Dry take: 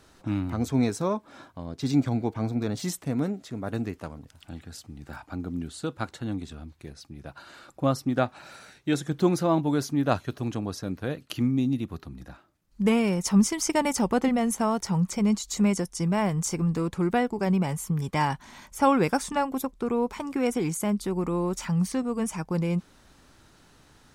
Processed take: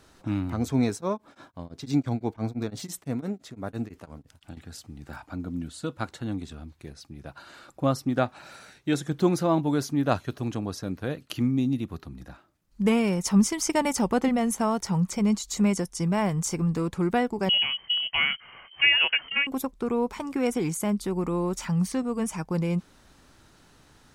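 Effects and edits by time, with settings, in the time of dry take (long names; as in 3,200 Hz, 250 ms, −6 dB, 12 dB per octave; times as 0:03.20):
0:00.93–0:04.57: tremolo along a rectified sine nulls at 5.9 Hz
0:05.32–0:05.99: notch comb filter 400 Hz
0:17.49–0:19.47: voice inversion scrambler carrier 3,100 Hz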